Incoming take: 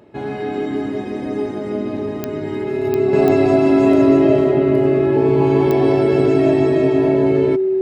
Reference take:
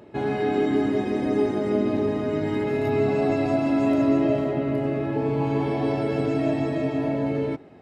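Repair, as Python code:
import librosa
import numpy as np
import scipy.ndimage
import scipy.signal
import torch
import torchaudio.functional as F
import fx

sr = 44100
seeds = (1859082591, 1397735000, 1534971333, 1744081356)

y = fx.fix_declick_ar(x, sr, threshold=10.0)
y = fx.notch(y, sr, hz=380.0, q=30.0)
y = fx.gain(y, sr, db=fx.steps((0.0, 0.0), (3.13, -7.0)))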